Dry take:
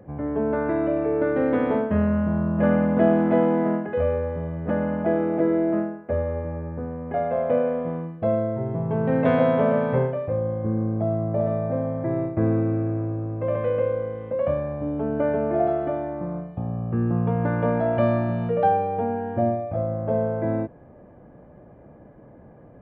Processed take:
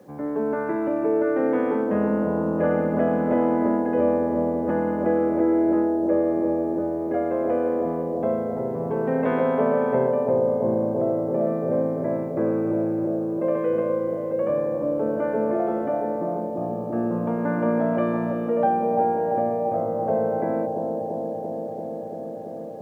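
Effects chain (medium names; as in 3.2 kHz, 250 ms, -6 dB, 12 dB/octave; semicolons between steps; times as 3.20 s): high-pass 79 Hz 6 dB/octave; three-band isolator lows -19 dB, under 170 Hz, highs -12 dB, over 2.5 kHz; band-stop 680 Hz, Q 12; in parallel at -1.5 dB: peak limiter -18 dBFS, peak gain reduction 9.5 dB; on the sum: word length cut 10-bit, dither none; on a send: bucket-brigade echo 339 ms, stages 2048, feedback 84%, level -4.5 dB; on the sum: trim -4.5 dB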